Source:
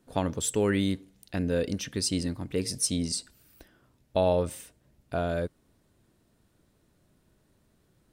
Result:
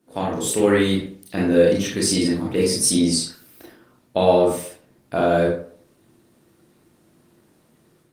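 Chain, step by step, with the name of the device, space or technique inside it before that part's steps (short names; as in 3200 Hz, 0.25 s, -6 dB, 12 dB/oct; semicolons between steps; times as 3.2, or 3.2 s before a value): 1.46–1.98 notch 5100 Hz, Q 8.4; far-field microphone of a smart speaker (reverb RT60 0.50 s, pre-delay 26 ms, DRR -5 dB; HPF 150 Hz 12 dB/oct; AGC gain up to 6.5 dB; Opus 24 kbps 48000 Hz)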